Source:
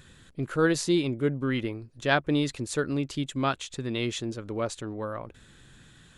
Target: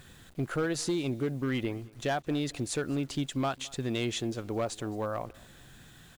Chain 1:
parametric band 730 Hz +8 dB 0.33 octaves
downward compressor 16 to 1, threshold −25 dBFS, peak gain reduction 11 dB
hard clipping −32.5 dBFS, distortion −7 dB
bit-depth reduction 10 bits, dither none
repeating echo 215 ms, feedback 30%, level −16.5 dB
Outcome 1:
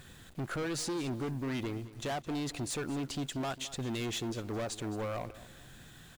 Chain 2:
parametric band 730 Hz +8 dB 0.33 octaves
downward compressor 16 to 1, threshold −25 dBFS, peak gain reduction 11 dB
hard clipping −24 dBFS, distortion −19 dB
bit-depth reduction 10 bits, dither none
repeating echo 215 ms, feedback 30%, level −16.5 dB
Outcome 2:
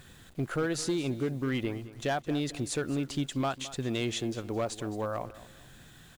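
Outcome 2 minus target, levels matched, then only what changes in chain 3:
echo-to-direct +7.5 dB
change: repeating echo 215 ms, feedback 30%, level −24 dB

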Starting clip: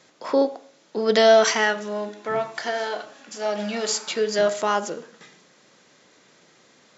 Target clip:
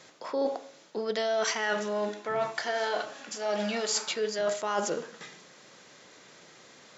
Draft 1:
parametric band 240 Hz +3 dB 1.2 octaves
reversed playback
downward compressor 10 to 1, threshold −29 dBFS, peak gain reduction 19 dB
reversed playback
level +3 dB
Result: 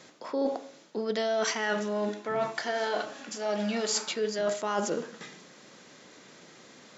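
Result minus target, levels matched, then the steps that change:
250 Hz band +4.0 dB
change: parametric band 240 Hz −3.5 dB 1.2 octaves

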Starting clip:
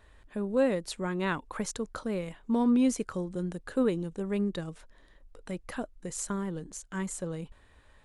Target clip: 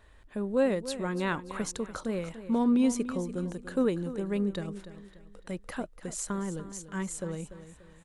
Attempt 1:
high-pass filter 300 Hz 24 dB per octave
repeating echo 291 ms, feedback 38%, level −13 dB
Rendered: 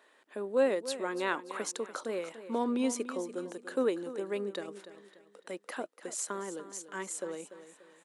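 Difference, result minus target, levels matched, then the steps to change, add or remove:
250 Hz band −4.5 dB
remove: high-pass filter 300 Hz 24 dB per octave

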